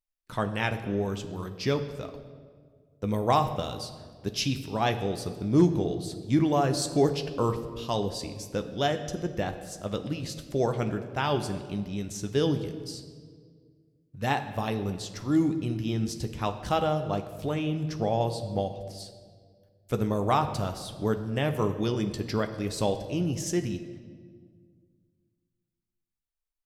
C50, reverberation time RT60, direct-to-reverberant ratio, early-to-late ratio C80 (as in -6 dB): 10.5 dB, 1.9 s, 6.5 dB, 12.0 dB